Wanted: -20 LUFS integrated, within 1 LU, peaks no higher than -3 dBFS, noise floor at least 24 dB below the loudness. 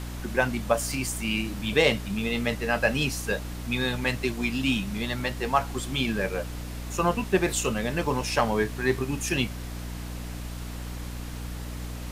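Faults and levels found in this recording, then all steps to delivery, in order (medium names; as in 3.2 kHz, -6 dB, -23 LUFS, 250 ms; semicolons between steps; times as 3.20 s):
hum 60 Hz; highest harmonic 300 Hz; hum level -33 dBFS; noise floor -36 dBFS; noise floor target -52 dBFS; loudness -28.0 LUFS; peak level -8.0 dBFS; loudness target -20.0 LUFS
-> hum notches 60/120/180/240/300 Hz; noise print and reduce 16 dB; trim +8 dB; peak limiter -3 dBFS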